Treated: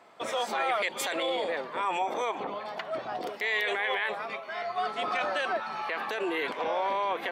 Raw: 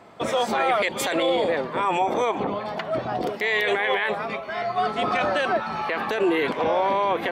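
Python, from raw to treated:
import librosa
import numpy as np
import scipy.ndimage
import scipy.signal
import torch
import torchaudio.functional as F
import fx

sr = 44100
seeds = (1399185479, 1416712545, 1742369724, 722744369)

y = fx.highpass(x, sr, hz=650.0, slope=6)
y = y * 10.0 ** (-4.5 / 20.0)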